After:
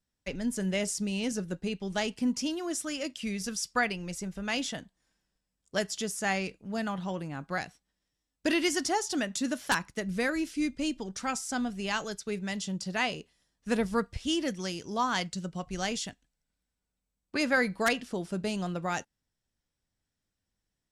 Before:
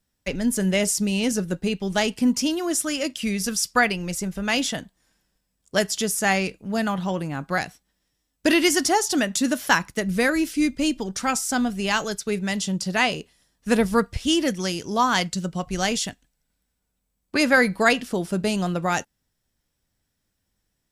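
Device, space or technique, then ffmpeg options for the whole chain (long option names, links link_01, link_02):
overflowing digital effects unit: -af "aeval=exprs='(mod(2*val(0)+1,2)-1)/2':channel_layout=same,lowpass=9300,volume=-8.5dB"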